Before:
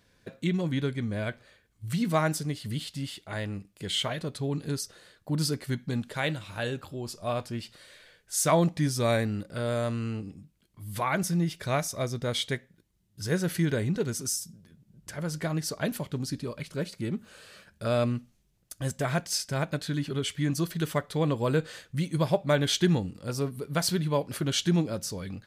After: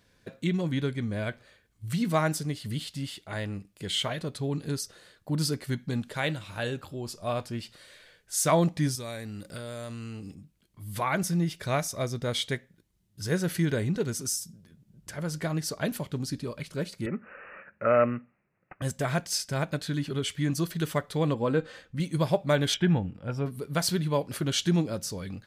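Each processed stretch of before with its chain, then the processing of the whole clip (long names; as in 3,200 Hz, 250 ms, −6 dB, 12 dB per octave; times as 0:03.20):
0:08.95–0:10.35: high-shelf EQ 3,200 Hz +10 dB + downward compressor 5 to 1, threshold −35 dBFS
0:17.06–0:18.82: loudspeaker in its box 160–7,700 Hz, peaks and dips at 540 Hz +8 dB, 1,300 Hz +10 dB, 1,900 Hz +8 dB + bad sample-rate conversion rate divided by 8×, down none, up filtered
0:21.34–0:22.00: low-pass filter 2,100 Hz 6 dB per octave + comb filter 3.8 ms, depth 38%
0:22.74–0:23.46: Savitzky-Golay smoothing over 25 samples + comb filter 1.3 ms, depth 32%
whole clip: no processing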